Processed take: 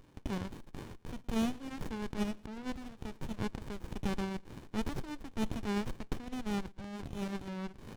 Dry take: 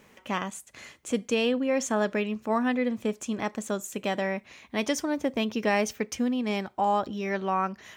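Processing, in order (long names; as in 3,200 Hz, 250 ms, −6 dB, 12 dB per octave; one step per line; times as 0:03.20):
0:00.95–0:02.07: mu-law and A-law mismatch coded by A
brickwall limiter −24 dBFS, peak gain reduction 11.5 dB
resonant band-pass 3,600 Hz, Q 3.8
single-tap delay 113 ms −22.5 dB
windowed peak hold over 65 samples
level +15 dB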